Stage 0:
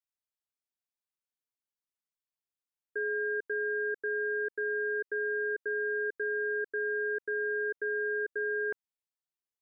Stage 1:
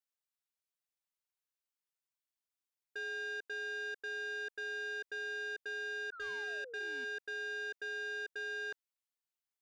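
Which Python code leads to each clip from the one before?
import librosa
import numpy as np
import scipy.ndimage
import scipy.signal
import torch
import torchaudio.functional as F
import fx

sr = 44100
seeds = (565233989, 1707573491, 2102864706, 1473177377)

y = fx.low_shelf(x, sr, hz=430.0, db=-11.0)
y = fx.spec_paint(y, sr, seeds[0], shape='fall', start_s=6.12, length_s=0.93, low_hz=240.0, high_hz=1500.0, level_db=-49.0)
y = 10.0 ** (-36.5 / 20.0) * np.tanh(y / 10.0 ** (-36.5 / 20.0))
y = y * librosa.db_to_amplitude(-1.0)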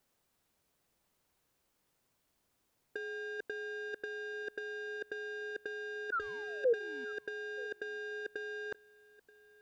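y = fx.over_compress(x, sr, threshold_db=-47.0, ratio=-0.5)
y = fx.tilt_shelf(y, sr, db=7.0, hz=970.0)
y = y + 10.0 ** (-21.5 / 20.0) * np.pad(y, (int(930 * sr / 1000.0), 0))[:len(y)]
y = y * librosa.db_to_amplitude(10.5)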